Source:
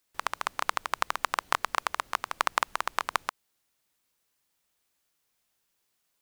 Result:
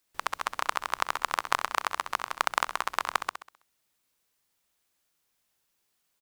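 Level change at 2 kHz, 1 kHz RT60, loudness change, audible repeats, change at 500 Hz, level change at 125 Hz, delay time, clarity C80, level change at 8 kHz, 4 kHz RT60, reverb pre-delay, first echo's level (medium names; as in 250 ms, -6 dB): +0.5 dB, no reverb, +0.5 dB, 4, +0.5 dB, no reading, 65 ms, no reverb, +0.5 dB, no reverb, no reverb, -10.0 dB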